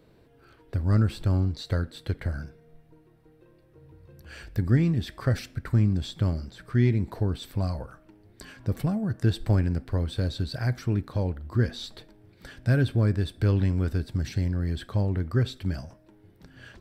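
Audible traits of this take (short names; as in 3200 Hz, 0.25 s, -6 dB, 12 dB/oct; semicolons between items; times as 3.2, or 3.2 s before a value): noise floor -58 dBFS; spectral tilt -7.5 dB/oct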